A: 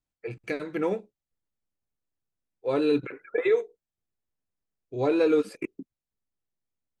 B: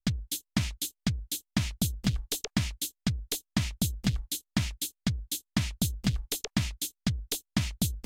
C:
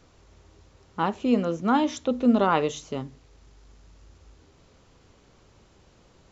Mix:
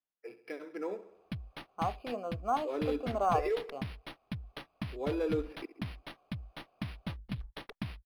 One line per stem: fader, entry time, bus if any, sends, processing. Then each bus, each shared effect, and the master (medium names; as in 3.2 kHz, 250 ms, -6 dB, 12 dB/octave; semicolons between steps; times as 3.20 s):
-10.0 dB, 0.00 s, no send, echo send -14.5 dB, high-pass 250 Hz 24 dB/octave
-10.5 dB, 1.25 s, no send, no echo send, none
+2.0 dB, 0.80 s, no send, no echo send, vowel filter a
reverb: none
echo: feedback delay 67 ms, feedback 53%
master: decimation joined by straight lines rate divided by 6×